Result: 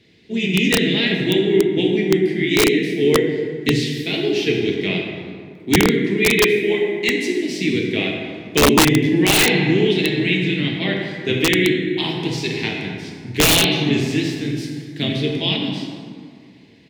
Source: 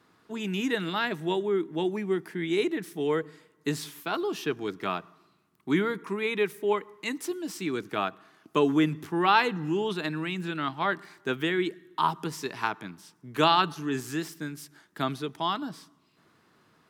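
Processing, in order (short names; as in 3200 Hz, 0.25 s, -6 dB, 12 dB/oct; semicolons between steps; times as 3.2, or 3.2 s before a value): harmoniser -4 st -16 dB, -3 st -8 dB; EQ curve 450 Hz 0 dB, 1300 Hz -26 dB, 2000 Hz +6 dB, 4100 Hz +6 dB, 11000 Hz -12 dB; plate-style reverb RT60 2.2 s, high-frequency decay 0.5×, DRR -1 dB; wrapped overs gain 13 dB; low shelf 170 Hz +5.5 dB; gain +6.5 dB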